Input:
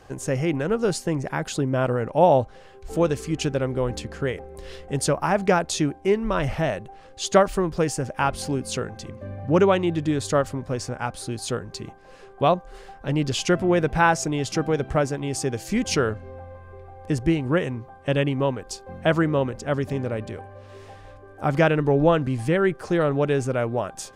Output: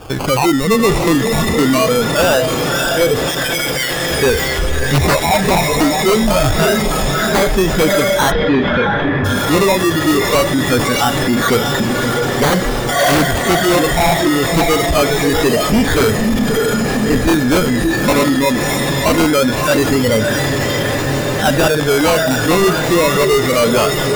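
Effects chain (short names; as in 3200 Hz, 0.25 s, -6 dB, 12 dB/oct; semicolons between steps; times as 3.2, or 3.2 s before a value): rattling part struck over -24 dBFS, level -9 dBFS; decimation with a swept rate 22×, swing 60% 0.23 Hz; vocal rider within 5 dB 0.5 s; 3.27–4.11 HPF 1200 Hz 12 dB/oct; 4.7–5.41 doubler 13 ms -3 dB; diffused feedback echo 0.613 s, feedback 65%, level -5.5 dB; soft clip -9 dBFS, distortion -20 dB; spectral noise reduction 12 dB; sine folder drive 5 dB, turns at -13 dBFS; 8.3–9.24 LPF 3900 Hz -> 2400 Hz 24 dB/oct; maximiser +23.5 dB; gain -7 dB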